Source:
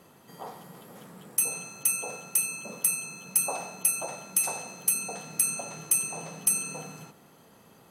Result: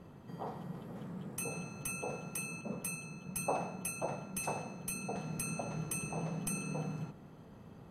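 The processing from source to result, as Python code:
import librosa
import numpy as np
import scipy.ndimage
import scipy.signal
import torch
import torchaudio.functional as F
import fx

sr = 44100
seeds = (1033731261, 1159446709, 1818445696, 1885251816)

y = fx.riaa(x, sr, side='playback')
y = fx.band_widen(y, sr, depth_pct=40, at=(2.61, 5.16))
y = y * 10.0 ** (-3.0 / 20.0)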